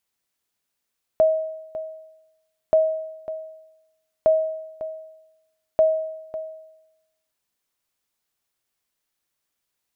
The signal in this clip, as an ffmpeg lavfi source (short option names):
-f lavfi -i "aevalsrc='0.299*(sin(2*PI*635*mod(t,1.53))*exp(-6.91*mod(t,1.53)/0.95)+0.2*sin(2*PI*635*max(mod(t,1.53)-0.55,0))*exp(-6.91*max(mod(t,1.53)-0.55,0)/0.95))':d=6.12:s=44100"